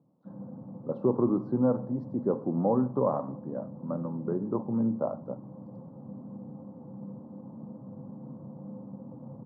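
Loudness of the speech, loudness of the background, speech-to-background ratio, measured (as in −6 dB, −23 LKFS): −30.0 LKFS, −44.0 LKFS, 14.0 dB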